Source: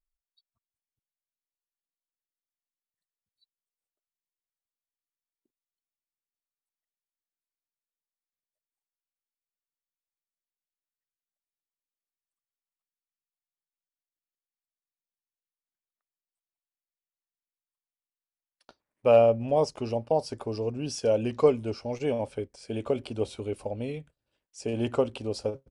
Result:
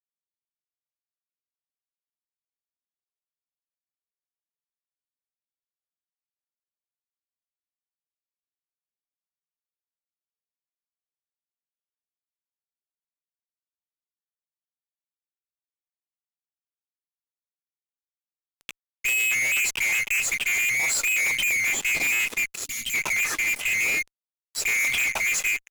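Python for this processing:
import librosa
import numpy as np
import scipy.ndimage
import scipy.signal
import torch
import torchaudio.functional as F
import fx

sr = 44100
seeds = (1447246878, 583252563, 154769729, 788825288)

y = fx.band_swap(x, sr, width_hz=2000)
y = fx.fuzz(y, sr, gain_db=46.0, gate_db=-51.0)
y = fx.spec_box(y, sr, start_s=22.65, length_s=0.29, low_hz=280.0, high_hz=2700.0, gain_db=-13)
y = F.gain(torch.from_numpy(y), -9.0).numpy()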